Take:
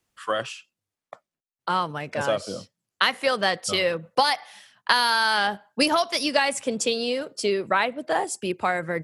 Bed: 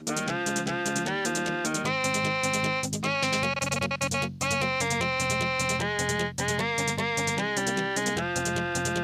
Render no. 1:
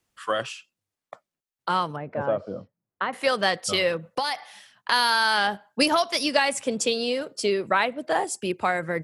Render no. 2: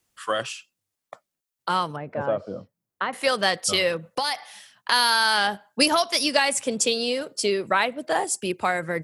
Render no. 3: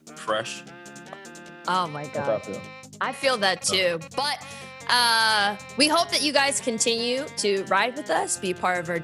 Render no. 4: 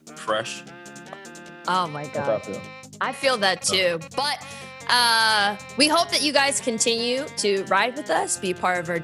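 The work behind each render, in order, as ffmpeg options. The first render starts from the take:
ffmpeg -i in.wav -filter_complex "[0:a]asettb=1/sr,asplit=3[link_01][link_02][link_03];[link_01]atrim=end=1.964[link_04];[link_02]atrim=start=1.96:end=3.13,asetpts=PTS-STARTPTS,afade=type=in:duration=0.004:curve=qsin,afade=type=out:start_time=1.166:duration=0.004:curve=qsin,lowpass=1100[link_05];[link_03]atrim=start=3.126[link_06];[link_04][link_05]acrossfade=duration=0.004:curve1=hsin:curve2=qsin[link_07];[link_07][link_06]acrossfade=duration=0.004:curve1=qsin:curve2=hsin,asplit=3[link_08][link_09][link_10];[link_08]afade=type=out:start_time=4.09:duration=0.02[link_11];[link_09]acompressor=threshold=-21dB:ratio=6:attack=3.2:release=140:knee=1:detection=peak,afade=type=in:start_time=4.09:duration=0.02,afade=type=out:start_time=4.91:duration=0.02[link_12];[link_10]afade=type=in:start_time=4.91:duration=0.02[link_13];[link_11][link_12][link_13]amix=inputs=3:normalize=0" out.wav
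ffmpeg -i in.wav -af "highshelf=frequency=5100:gain=7.5" out.wav
ffmpeg -i in.wav -i bed.wav -filter_complex "[1:a]volume=-14dB[link_01];[0:a][link_01]amix=inputs=2:normalize=0" out.wav
ffmpeg -i in.wav -af "volume=1.5dB" out.wav

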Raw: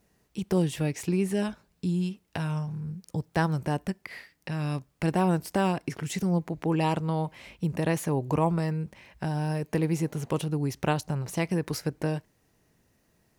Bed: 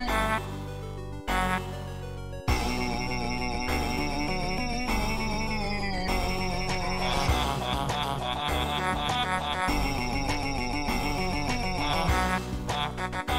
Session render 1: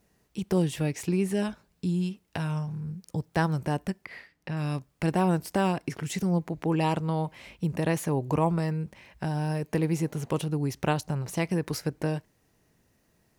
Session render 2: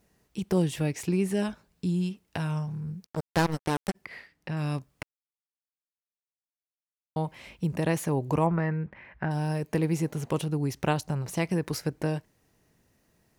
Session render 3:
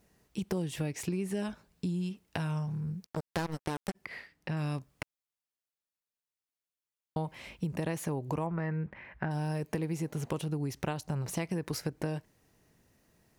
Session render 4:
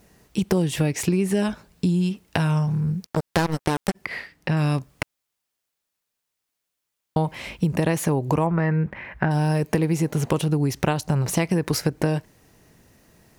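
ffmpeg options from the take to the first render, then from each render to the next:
ffmpeg -i in.wav -filter_complex "[0:a]asettb=1/sr,asplit=3[link_01][link_02][link_03];[link_01]atrim=end=4.054[link_04];[link_02]atrim=start=4.05:end=4.57,asetpts=PTS-STARTPTS,afade=type=in:duration=0.004:curve=qsin,afade=type=out:start_time=0.516:duration=0.004:curve=qsin,highshelf=frequency=5400:gain=-12[link_05];[link_03]atrim=start=4.566[link_06];[link_04][link_05]acrossfade=duration=0.004:curve1=hsin:curve2=qsin[link_07];[link_07][link_06]acrossfade=duration=0.004:curve1=qsin:curve2=hsin" out.wav
ffmpeg -i in.wav -filter_complex "[0:a]asplit=3[link_01][link_02][link_03];[link_01]afade=type=out:start_time=3.05:duration=0.02[link_04];[link_02]acrusher=bits=3:mix=0:aa=0.5,afade=type=in:start_time=3.05:duration=0.02,afade=type=out:start_time=3.94:duration=0.02[link_05];[link_03]afade=type=in:start_time=3.94:duration=0.02[link_06];[link_04][link_05][link_06]amix=inputs=3:normalize=0,asettb=1/sr,asplit=3[link_07][link_08][link_09];[link_07]atrim=end=8.464[link_10];[link_08]atrim=start=8.46:end=9.31,asetpts=PTS-STARTPTS,afade=type=in:duration=0.004:curve=qsin,afade=type=out:start_time=0.846:duration=0.004:curve=qsin,lowpass=frequency=1800:width_type=q:width=2.2[link_11];[link_09]atrim=start=9.306[link_12];[link_10][link_11]acrossfade=duration=0.004:curve1=hsin:curve2=qsin[link_13];[link_13][link_12]acrossfade=duration=0.004:curve1=qsin:curve2=hsin,asplit=3[link_14][link_15][link_16];[link_14]atrim=end=5.03,asetpts=PTS-STARTPTS,afade=type=out:start_time=5.026:duration=0.004:curve=hsin[link_17];[link_15]atrim=start=5.03:end=7.16,asetpts=PTS-STARTPTS,volume=0[link_18];[link_16]atrim=start=7.16,asetpts=PTS-STARTPTS,afade=type=in:duration=0.004:curve=hsin[link_19];[link_17][link_18][link_19]concat=n=3:v=0:a=1" out.wav
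ffmpeg -i in.wav -af "acompressor=threshold=-30dB:ratio=6" out.wav
ffmpeg -i in.wav -af "volume=12dB" out.wav

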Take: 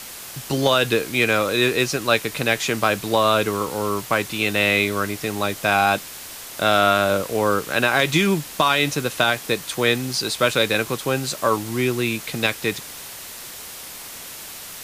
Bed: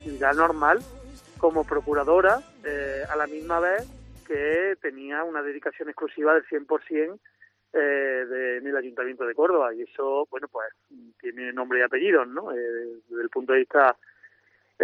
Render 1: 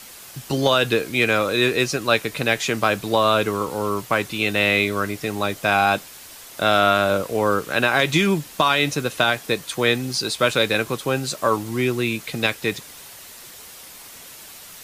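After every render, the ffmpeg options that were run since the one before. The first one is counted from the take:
ffmpeg -i in.wav -af "afftdn=noise_reduction=6:noise_floor=-37" out.wav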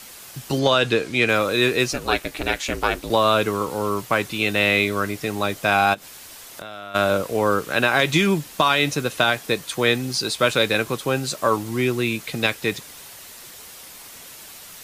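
ffmpeg -i in.wav -filter_complex "[0:a]asettb=1/sr,asplit=3[link_01][link_02][link_03];[link_01]atrim=end=0.594[link_04];[link_02]atrim=start=0.59:end=1.29,asetpts=PTS-STARTPTS,afade=type=in:duration=0.004:curve=qsin,afade=type=out:start_time=0.696:duration=0.004:curve=qsin,lowpass=7900[link_05];[link_03]atrim=start=1.286[link_06];[link_04][link_05]acrossfade=duration=0.004:curve1=hsin:curve2=qsin[link_07];[link_07][link_06]acrossfade=duration=0.004:curve1=qsin:curve2=hsin,asettb=1/sr,asplit=3[link_08][link_09][link_10];[link_08]atrim=end=1.934[link_11];[link_09]atrim=start=1.93:end=3.1,asetpts=PTS-STARTPTS,afade=type=in:duration=0.004:curve=qsin,afade=type=out:start_time=1.166:duration=0.004:curve=qsin,aeval=exprs='val(0)*sin(2*PI*160*n/s)':channel_layout=same[link_12];[link_10]atrim=start=3.096[link_13];[link_11][link_12]acrossfade=duration=0.004:curve1=hsin:curve2=qsin[link_14];[link_14][link_13]acrossfade=duration=0.004:curve1=qsin:curve2=hsin,asplit=3[link_15][link_16][link_17];[link_15]afade=type=out:start_time=5.93:duration=0.02[link_18];[link_16]acompressor=threshold=-32dB:ratio=8:attack=3.2:release=140:knee=1:detection=peak,afade=type=in:start_time=5.93:duration=0.02,afade=type=out:start_time=6.94:duration=0.02[link_19];[link_17]afade=type=in:start_time=6.94:duration=0.02[link_20];[link_18][link_19][link_20]amix=inputs=3:normalize=0" out.wav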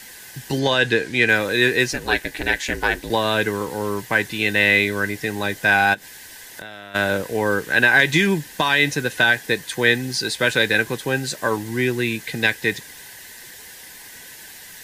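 ffmpeg -i in.wav -af "superequalizer=8b=0.631:10b=0.398:11b=2.51" out.wav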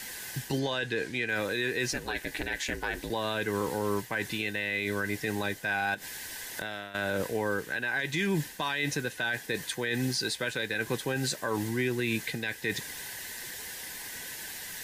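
ffmpeg -i in.wav -af "areverse,acompressor=threshold=-24dB:ratio=6,areverse,alimiter=limit=-20dB:level=0:latency=1:release=100" out.wav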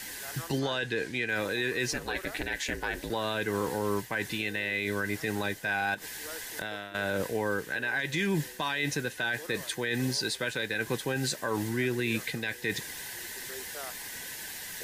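ffmpeg -i in.wav -i bed.wav -filter_complex "[1:a]volume=-25.5dB[link_01];[0:a][link_01]amix=inputs=2:normalize=0" out.wav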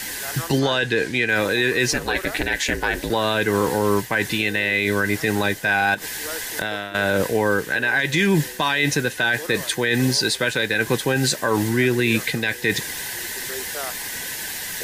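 ffmpeg -i in.wav -af "volume=10.5dB" out.wav

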